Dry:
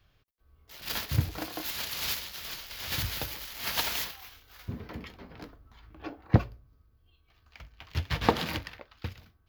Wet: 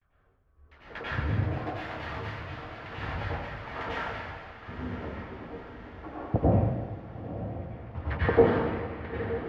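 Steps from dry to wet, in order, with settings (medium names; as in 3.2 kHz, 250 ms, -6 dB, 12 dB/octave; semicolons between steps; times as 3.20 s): gate with hold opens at -57 dBFS; LFO low-pass saw down 4.2 Hz 400–2100 Hz; echo that smears into a reverb 956 ms, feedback 57%, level -11 dB; plate-style reverb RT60 1.4 s, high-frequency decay 0.95×, pre-delay 80 ms, DRR -9.5 dB; trim -7.5 dB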